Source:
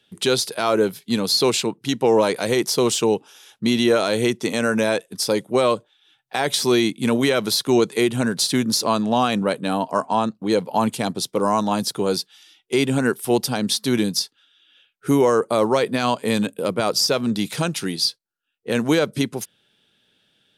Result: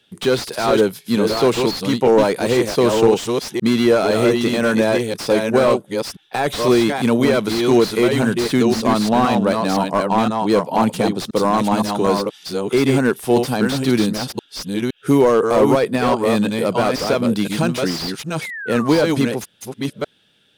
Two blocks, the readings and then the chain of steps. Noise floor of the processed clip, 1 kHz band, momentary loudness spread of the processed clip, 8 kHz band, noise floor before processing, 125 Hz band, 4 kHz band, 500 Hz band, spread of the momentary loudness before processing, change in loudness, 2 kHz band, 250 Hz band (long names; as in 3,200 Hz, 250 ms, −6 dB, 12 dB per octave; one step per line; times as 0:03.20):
−55 dBFS, +3.5 dB, 10 LU, −4.0 dB, −66 dBFS, +4.5 dB, −2.0 dB, +4.5 dB, 6 LU, +3.0 dB, +3.0 dB, +4.5 dB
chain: delay that plays each chunk backwards 514 ms, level −5 dB
sound drawn into the spectrogram fall, 0:18.41–0:19.02, 840–2,300 Hz −33 dBFS
slew-rate limiting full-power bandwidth 150 Hz
level +3.5 dB